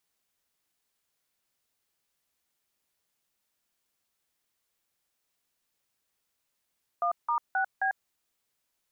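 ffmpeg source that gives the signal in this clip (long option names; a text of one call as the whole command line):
ffmpeg -f lavfi -i "aevalsrc='0.0447*clip(min(mod(t,0.265),0.096-mod(t,0.265))/0.002,0,1)*(eq(floor(t/0.265),0)*(sin(2*PI*697*mod(t,0.265))+sin(2*PI*1209*mod(t,0.265)))+eq(floor(t/0.265),1)*(sin(2*PI*941*mod(t,0.265))+sin(2*PI*1209*mod(t,0.265)))+eq(floor(t/0.265),2)*(sin(2*PI*770*mod(t,0.265))+sin(2*PI*1477*mod(t,0.265)))+eq(floor(t/0.265),3)*(sin(2*PI*770*mod(t,0.265))+sin(2*PI*1633*mod(t,0.265))))':duration=1.06:sample_rate=44100" out.wav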